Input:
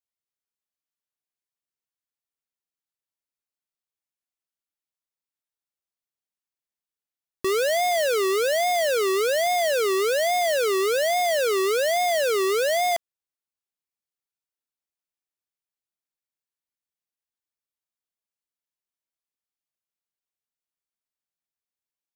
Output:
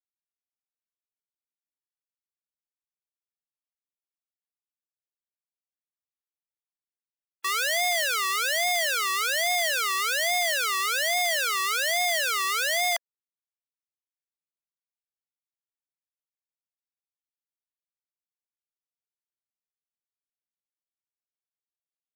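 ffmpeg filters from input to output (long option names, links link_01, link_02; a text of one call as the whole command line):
ffmpeg -i in.wav -af "highpass=frequency=910:width=0.5412,highpass=frequency=910:width=1.3066,afftfilt=real='re*gte(hypot(re,im),0.00562)':imag='im*gte(hypot(re,im),0.00562)':win_size=1024:overlap=0.75,volume=3dB" out.wav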